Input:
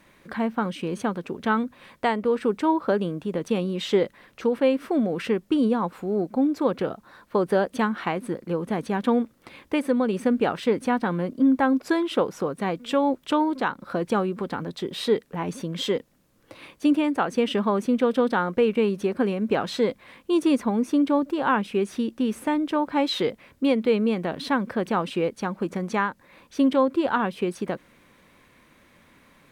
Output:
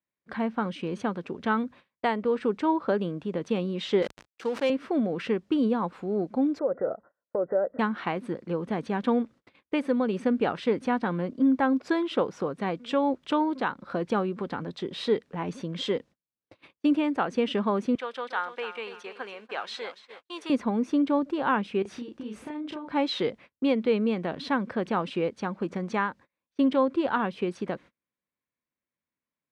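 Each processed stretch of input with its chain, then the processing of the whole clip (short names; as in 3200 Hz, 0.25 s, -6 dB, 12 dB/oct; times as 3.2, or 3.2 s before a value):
4.02–4.7 backlash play -36.5 dBFS + RIAA curve recording + sustainer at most 130 dB/s
6.59–7.79 compressor, threshold -23 dBFS + rippled Chebyshev low-pass 2000 Hz, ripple 9 dB + bell 620 Hz +11 dB 0.81 oct
17.95–20.5 HPF 920 Hz + lo-fi delay 0.287 s, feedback 35%, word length 9-bit, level -11 dB
21.82–22.92 compressor 16:1, threshold -31 dBFS + doubler 33 ms -2.5 dB
whole clip: LPF 5400 Hz 12 dB/oct; gate -43 dBFS, range -35 dB; HPF 51 Hz; gain -3 dB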